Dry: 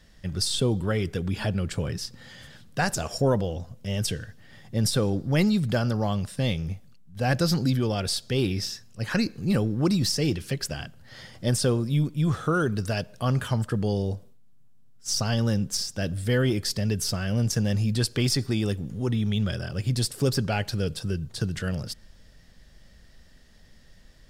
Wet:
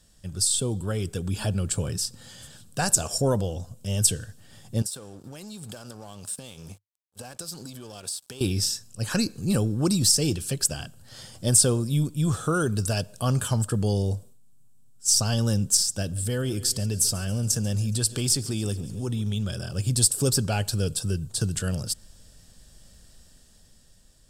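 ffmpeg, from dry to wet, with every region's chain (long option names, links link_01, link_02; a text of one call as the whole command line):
ffmpeg -i in.wav -filter_complex "[0:a]asettb=1/sr,asplit=3[link_01][link_02][link_03];[link_01]atrim=end=4.824[link_04];[link_02]atrim=start=4.82:end=8.41,asetpts=PTS-STARTPTS,afade=type=in:duration=0.004:curve=qsin,afade=type=out:start_time=3.586:duration=0.004:curve=qsin,highpass=frequency=340:poles=1,acompressor=threshold=-35dB:ratio=16:attack=3.2:release=140:knee=1:detection=peak,aeval=exprs='sgn(val(0))*max(abs(val(0))-0.00266,0)':channel_layout=same[link_05];[link_03]atrim=start=8.406[link_06];[link_04][link_05]acrossfade=duration=0.004:curve1=hsin:curve2=qsin[link_07];[link_07][link_06]acrossfade=duration=0.004:curve1=qsin:curve2=hsin,asettb=1/sr,asplit=3[link_08][link_09][link_10];[link_08]atrim=end=16.024[link_11];[link_09]atrim=start=16.02:end=19.72,asetpts=PTS-STARTPTS,afade=type=in:duration=0.004:curve=qsin,afade=type=out:start_time=3.696:duration=0.004:curve=qsin,aecho=1:1:139|278|417|556|695:0.106|0.0614|0.0356|0.0207|0.012,atrim=end_sample=163170,acompressor=threshold=-31dB:ratio=1.5:attack=3.2:release=140:knee=1:detection=peak[link_12];[link_10]atrim=start=19.716[link_13];[link_11][link_12]acrossfade=duration=0.004:curve1=hsin:curve2=qsin[link_14];[link_14][link_13]acrossfade=duration=0.004:curve1=qsin:curve2=hsin,equalizer=frequency=11000:width_type=o:width=1.5:gain=10.5,dynaudnorm=framelen=300:gausssize=7:maxgain=5.5dB,equalizer=frequency=100:width_type=o:width=0.33:gain=4,equalizer=frequency=2000:width_type=o:width=0.33:gain=-11,equalizer=frequency=8000:width_type=o:width=0.33:gain=9,volume=-5.5dB" out.wav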